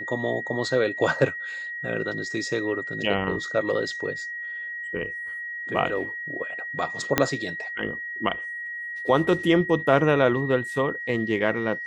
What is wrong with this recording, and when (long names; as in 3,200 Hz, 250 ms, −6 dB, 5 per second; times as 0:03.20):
whistle 1,900 Hz −31 dBFS
0:07.18: click −3 dBFS